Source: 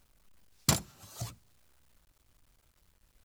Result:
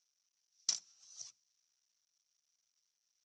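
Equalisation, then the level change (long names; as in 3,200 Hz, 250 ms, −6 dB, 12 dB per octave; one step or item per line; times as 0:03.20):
resonant band-pass 5,800 Hz, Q 12
high-frequency loss of the air 120 metres
+13.0 dB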